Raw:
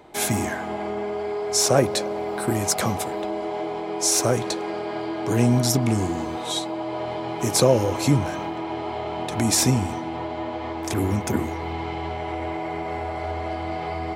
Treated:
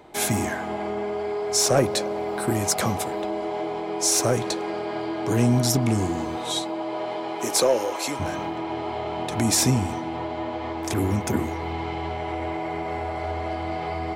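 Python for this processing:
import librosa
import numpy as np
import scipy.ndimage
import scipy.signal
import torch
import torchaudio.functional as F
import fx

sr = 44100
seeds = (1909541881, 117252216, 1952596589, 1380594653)

y = fx.highpass(x, sr, hz=fx.line((6.62, 150.0), (8.19, 600.0)), slope=12, at=(6.62, 8.19), fade=0.02)
y = 10.0 ** (-8.5 / 20.0) * np.tanh(y / 10.0 ** (-8.5 / 20.0))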